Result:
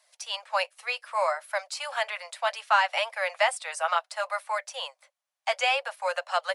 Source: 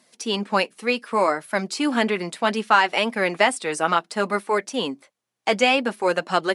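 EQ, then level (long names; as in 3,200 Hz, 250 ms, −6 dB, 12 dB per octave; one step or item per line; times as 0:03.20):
Butterworth high-pass 540 Hz 96 dB per octave
−5.0 dB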